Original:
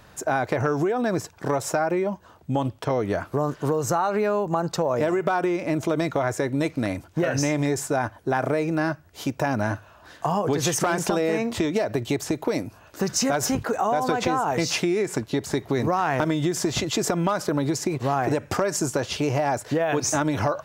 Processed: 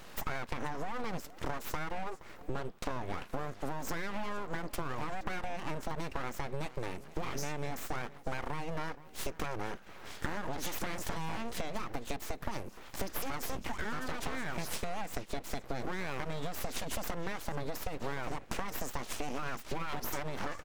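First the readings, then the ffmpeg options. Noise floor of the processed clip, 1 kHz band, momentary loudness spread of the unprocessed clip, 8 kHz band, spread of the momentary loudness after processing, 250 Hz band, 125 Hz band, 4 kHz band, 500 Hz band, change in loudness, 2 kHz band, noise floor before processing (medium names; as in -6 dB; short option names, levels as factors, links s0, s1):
-51 dBFS, -13.5 dB, 4 LU, -15.0 dB, 3 LU, -17.5 dB, -15.0 dB, -12.0 dB, -17.5 dB, -15.0 dB, -10.5 dB, -52 dBFS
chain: -filter_complex "[0:a]acompressor=threshold=0.0178:ratio=6,asplit=2[s0][s1];[s1]adelay=472.3,volume=0.141,highshelf=f=4000:g=-10.6[s2];[s0][s2]amix=inputs=2:normalize=0,aeval=exprs='abs(val(0))':c=same,volume=1.33"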